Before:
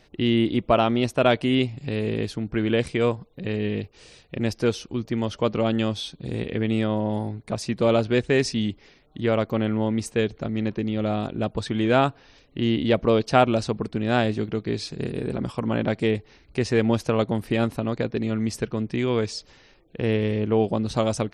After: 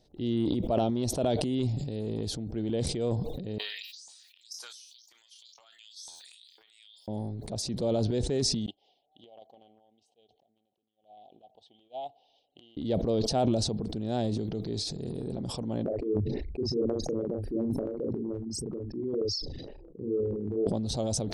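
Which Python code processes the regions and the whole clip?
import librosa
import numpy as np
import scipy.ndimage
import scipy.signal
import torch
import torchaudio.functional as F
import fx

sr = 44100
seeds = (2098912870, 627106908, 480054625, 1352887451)

y = fx.chain(x, sr, fx.differentiator(),
    fx.filter_lfo_highpass(shape='saw_up', hz=2.0, low_hz=910.0, high_hz=7100.0, q=5.1),
    fx.comb_fb(f0_hz=85.0, decay_s=0.2, harmonics='all', damping=0.0, mix_pct=60), at=(3.58, 7.08))
y = fx.chain(y, sr, fx.double_bandpass(hz=1500.0, octaves=2.0),
    fx.upward_expand(threshold_db=-53.0, expansion=2.5), at=(8.66, 12.77))
y = fx.chain(y, sr, fx.envelope_sharpen(power=3.0),
    fx.doubler(ms=39.0, db=-3.5),
    fx.stagger_phaser(hz=2.1), at=(15.84, 20.67))
y = fx.band_shelf(y, sr, hz=1700.0, db=-15.0, octaves=1.7)
y = fx.transient(y, sr, attack_db=-1, sustain_db=11)
y = fx.sustainer(y, sr, db_per_s=35.0)
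y = y * librosa.db_to_amplitude(-8.5)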